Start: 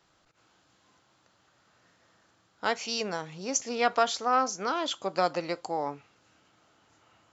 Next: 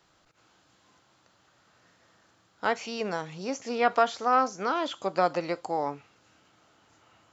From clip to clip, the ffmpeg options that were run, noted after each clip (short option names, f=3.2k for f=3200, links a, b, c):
-filter_complex "[0:a]acrossover=split=2600[a][b];[b]acompressor=threshold=-43dB:ratio=4:attack=1:release=60[c];[a][c]amix=inputs=2:normalize=0,volume=2dB"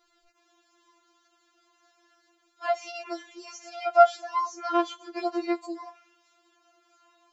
-af "afftfilt=real='re*4*eq(mod(b,16),0)':imag='im*4*eq(mod(b,16),0)':win_size=2048:overlap=0.75"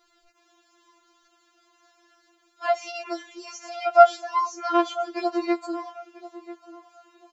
-filter_complex "[0:a]asplit=2[a][b];[b]adelay=991,lowpass=f=1.8k:p=1,volume=-15.5dB,asplit=2[c][d];[d]adelay=991,lowpass=f=1.8k:p=1,volume=0.25,asplit=2[e][f];[f]adelay=991,lowpass=f=1.8k:p=1,volume=0.25[g];[a][c][e][g]amix=inputs=4:normalize=0,volume=3.5dB"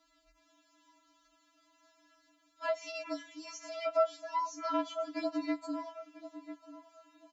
-af "acompressor=threshold=-26dB:ratio=2,afreqshift=-44,volume=-6dB"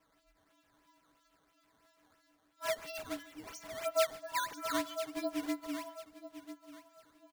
-af "acrusher=samples=10:mix=1:aa=0.000001:lfo=1:lforange=16:lforate=3,aecho=1:1:142:0.0944,volume=-2dB"